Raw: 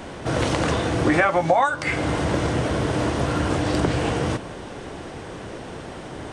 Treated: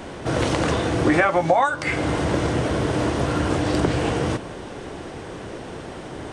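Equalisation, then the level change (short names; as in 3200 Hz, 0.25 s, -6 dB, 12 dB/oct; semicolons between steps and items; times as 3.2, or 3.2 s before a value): bell 370 Hz +2 dB; 0.0 dB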